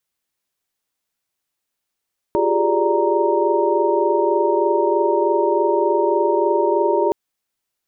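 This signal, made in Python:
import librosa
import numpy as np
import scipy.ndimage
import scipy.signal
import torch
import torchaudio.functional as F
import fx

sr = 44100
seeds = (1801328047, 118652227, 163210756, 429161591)

y = fx.chord(sr, length_s=4.77, notes=(65, 67, 68, 74, 82), wave='sine', level_db=-21.0)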